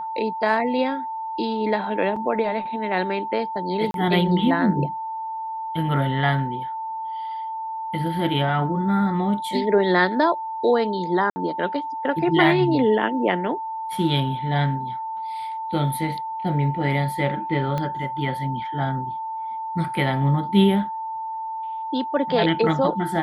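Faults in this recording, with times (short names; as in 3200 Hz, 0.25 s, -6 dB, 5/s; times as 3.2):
tone 890 Hz -27 dBFS
2.16 gap 4.6 ms
3.91–3.94 gap 32 ms
11.3–11.36 gap 60 ms
17.78 pop -14 dBFS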